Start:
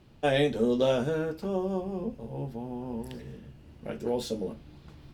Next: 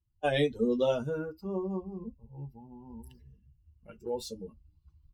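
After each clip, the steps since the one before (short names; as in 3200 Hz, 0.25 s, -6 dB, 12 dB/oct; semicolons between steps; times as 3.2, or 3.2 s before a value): per-bin expansion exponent 2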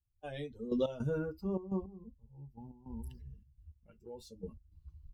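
low shelf 140 Hz +10.5 dB; in parallel at -1.5 dB: limiter -26.5 dBFS, peak gain reduction 11.5 dB; on the sum: step gate ".....x.xxxx.x" 105 bpm -12 dB; gain -7 dB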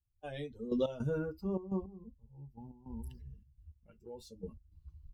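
nothing audible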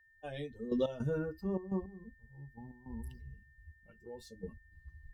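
whine 1800 Hz -64 dBFS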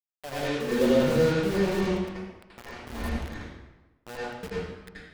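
bit-crush 7-bit; reverb RT60 1.1 s, pre-delay 76 ms, DRR -8.5 dB; gain +3.5 dB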